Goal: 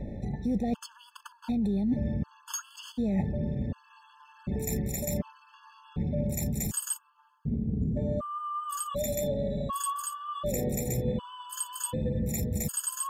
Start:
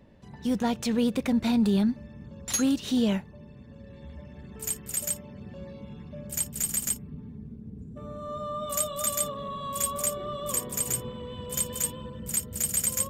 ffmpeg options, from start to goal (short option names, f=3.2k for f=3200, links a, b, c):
-filter_complex "[0:a]acrossover=split=600[a][b];[b]acontrast=87[c];[a][c]amix=inputs=2:normalize=0,tiltshelf=f=800:g=9.5,alimiter=limit=-17.5dB:level=0:latency=1:release=18,areverse,acompressor=threshold=-34dB:ratio=20,areverse,aeval=exprs='val(0)+0.00316*(sin(2*PI*50*n/s)+sin(2*PI*2*50*n/s)/2+sin(2*PI*3*50*n/s)/3+sin(2*PI*4*50*n/s)/4+sin(2*PI*5*50*n/s)/5)':c=same,afftfilt=real='re*gt(sin(2*PI*0.67*pts/sr)*(1-2*mod(floor(b*sr/1024/870),2)),0)':imag='im*gt(sin(2*PI*0.67*pts/sr)*(1-2*mod(floor(b*sr/1024/870),2)),0)':win_size=1024:overlap=0.75,volume=9dB"